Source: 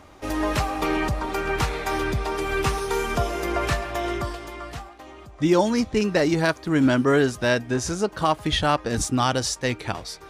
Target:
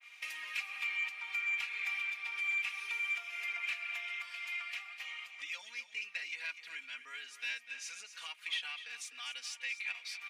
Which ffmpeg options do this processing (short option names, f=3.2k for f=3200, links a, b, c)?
-filter_complex "[0:a]agate=range=-33dB:threshold=-41dB:ratio=3:detection=peak,aecho=1:1:4.2:0.95,acompressor=threshold=-39dB:ratio=5,highpass=f=2.4k:t=q:w=6.6,asoftclip=type=tanh:threshold=-26dB,asplit=2[a][b];[b]aecho=0:1:249:0.251[c];[a][c]amix=inputs=2:normalize=0,adynamicequalizer=threshold=0.00316:dfrequency=4100:dqfactor=0.7:tfrequency=4100:tqfactor=0.7:attack=5:release=100:ratio=0.375:range=3.5:mode=cutabove:tftype=highshelf"